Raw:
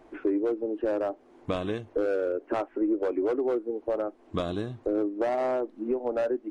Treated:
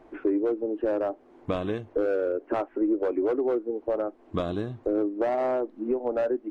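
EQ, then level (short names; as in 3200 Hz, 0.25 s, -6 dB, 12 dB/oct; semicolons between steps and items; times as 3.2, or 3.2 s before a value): high shelf 3700 Hz -8.5 dB; +1.5 dB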